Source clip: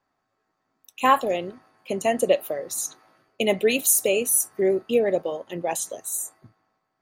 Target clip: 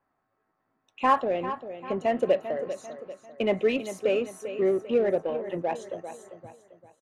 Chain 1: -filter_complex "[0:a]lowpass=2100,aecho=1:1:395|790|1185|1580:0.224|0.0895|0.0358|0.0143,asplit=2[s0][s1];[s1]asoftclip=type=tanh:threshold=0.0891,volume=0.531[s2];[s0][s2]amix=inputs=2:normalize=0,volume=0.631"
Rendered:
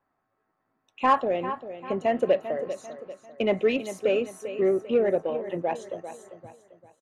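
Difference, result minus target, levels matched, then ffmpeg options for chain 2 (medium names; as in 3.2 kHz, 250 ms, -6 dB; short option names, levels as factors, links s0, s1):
saturation: distortion -5 dB
-filter_complex "[0:a]lowpass=2100,aecho=1:1:395|790|1185|1580:0.224|0.0895|0.0358|0.0143,asplit=2[s0][s1];[s1]asoftclip=type=tanh:threshold=0.0376,volume=0.531[s2];[s0][s2]amix=inputs=2:normalize=0,volume=0.631"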